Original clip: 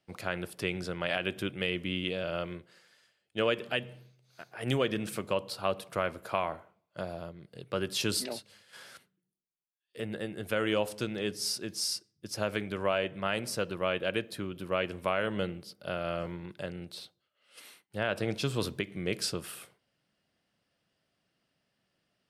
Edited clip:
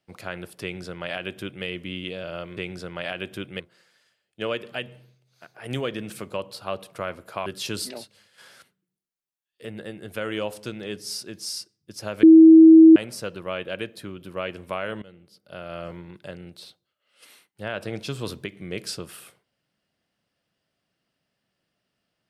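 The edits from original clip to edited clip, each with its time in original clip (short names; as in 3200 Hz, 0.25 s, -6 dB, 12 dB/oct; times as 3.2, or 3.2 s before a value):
0.62–1.65 copy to 2.57
6.43–7.81 cut
12.58–13.31 bleep 322 Hz -6 dBFS
15.37–16.25 fade in, from -20.5 dB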